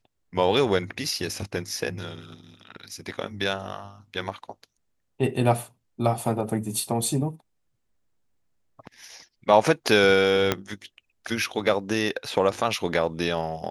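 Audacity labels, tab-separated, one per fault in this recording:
10.520000	10.520000	pop -6 dBFS

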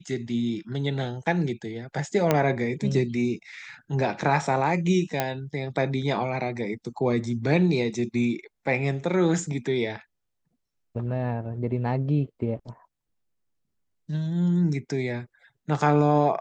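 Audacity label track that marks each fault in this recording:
2.310000	2.310000	pop -7 dBFS
5.200000	5.200000	pop -9 dBFS

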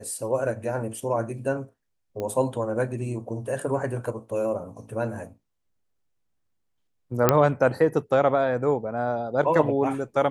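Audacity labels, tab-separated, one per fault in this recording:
2.200000	2.200000	pop -19 dBFS
7.290000	7.290000	pop -2 dBFS

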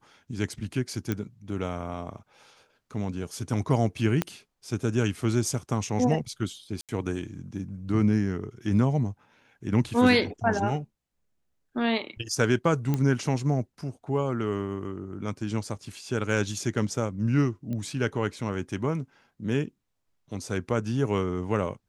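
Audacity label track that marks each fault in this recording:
1.120000	1.120000	pop -15 dBFS
4.220000	4.220000	pop -11 dBFS
6.810000	6.890000	gap 77 ms
12.940000	12.940000	pop -14 dBFS
17.730000	17.730000	pop -23 dBFS

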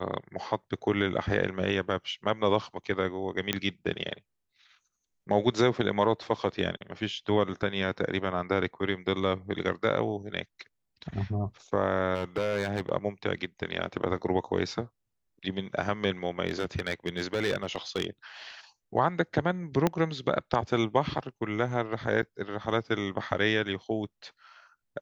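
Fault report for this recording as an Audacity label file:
3.530000	3.530000	pop -10 dBFS
12.140000	12.920000	clipped -23.5 dBFS
16.470000	18.050000	clipped -22.5 dBFS
19.870000	19.870000	pop -11 dBFS
22.220000	22.230000	gap 7.5 ms

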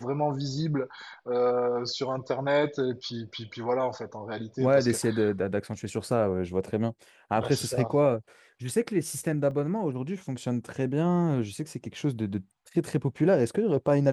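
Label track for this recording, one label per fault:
9.510000	9.510000	gap 2.4 ms

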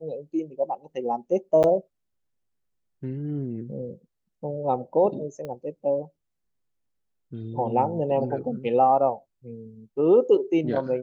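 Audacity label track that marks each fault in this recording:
1.630000	1.640000	gap 9 ms
5.450000	5.450000	pop -23 dBFS

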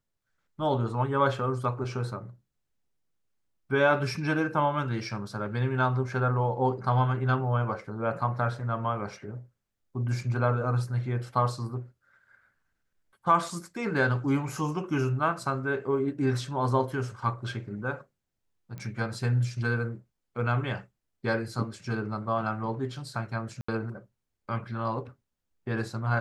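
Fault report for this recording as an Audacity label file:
18.780000	18.780000	pop -27 dBFS
23.610000	23.680000	gap 74 ms

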